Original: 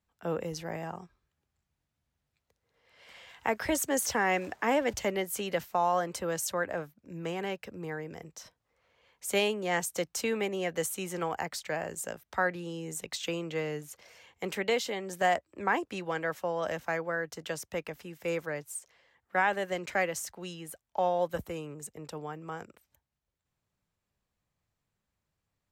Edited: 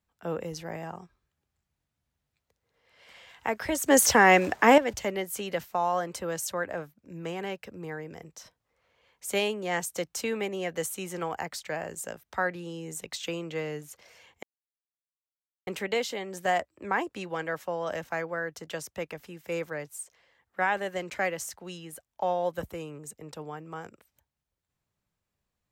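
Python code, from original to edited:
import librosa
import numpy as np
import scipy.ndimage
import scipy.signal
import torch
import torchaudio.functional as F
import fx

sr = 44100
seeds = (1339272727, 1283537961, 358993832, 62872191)

y = fx.edit(x, sr, fx.clip_gain(start_s=3.86, length_s=0.92, db=9.5),
    fx.insert_silence(at_s=14.43, length_s=1.24), tone=tone)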